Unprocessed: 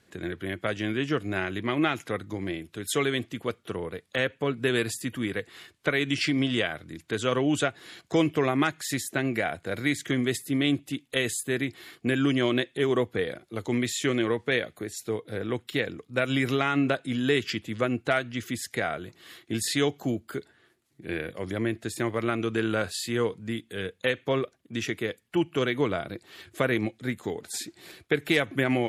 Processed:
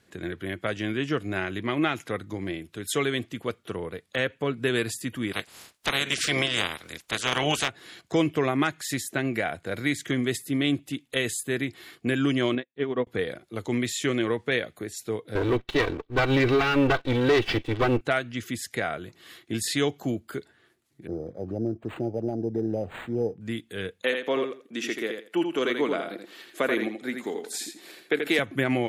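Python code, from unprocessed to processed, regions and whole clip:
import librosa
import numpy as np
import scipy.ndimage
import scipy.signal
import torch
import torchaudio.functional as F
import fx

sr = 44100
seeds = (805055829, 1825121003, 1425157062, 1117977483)

y = fx.spec_clip(x, sr, under_db=25, at=(5.31, 7.68), fade=0.02)
y = fx.clip_hard(y, sr, threshold_db=-12.5, at=(5.31, 7.68), fade=0.02)
y = fx.chain(y, sr, fx.air_absorb(metres=260.0),
    fx.comb(ms=4.2, depth=0.32),
    fx.upward_expand(threshold_db=-42.0, expansion=2.5), at=(12.55, 13.07))
y = fx.chain(y, sr, fx.lower_of_two(delay_ms=2.6),
    fx.lowpass(hz=4200.0, slope=24),
    fx.leveller(passes=2), at=(15.35, 18.01))
y = fx.chain(y, sr, fx.clip_hard(threshold_db=-18.0),
    fx.brickwall_bandstop(low_hz=880.0, high_hz=6100.0),
    fx.resample_linear(factor=8), at=(21.07, 23.41))
y = fx.chain(y, sr, fx.highpass(hz=220.0, slope=24),
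    fx.echo_feedback(ms=83, feedback_pct=19, wet_db=-6.0), at=(24.03, 28.39))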